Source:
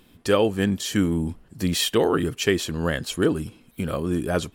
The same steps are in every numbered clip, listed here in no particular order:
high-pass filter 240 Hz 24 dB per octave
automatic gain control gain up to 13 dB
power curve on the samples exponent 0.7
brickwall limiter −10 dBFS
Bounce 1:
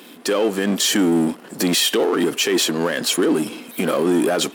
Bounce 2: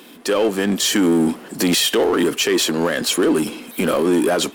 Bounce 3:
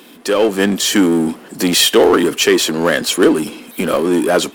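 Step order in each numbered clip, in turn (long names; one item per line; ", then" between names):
automatic gain control, then power curve on the samples, then high-pass filter, then brickwall limiter
high-pass filter, then power curve on the samples, then automatic gain control, then brickwall limiter
high-pass filter, then brickwall limiter, then automatic gain control, then power curve on the samples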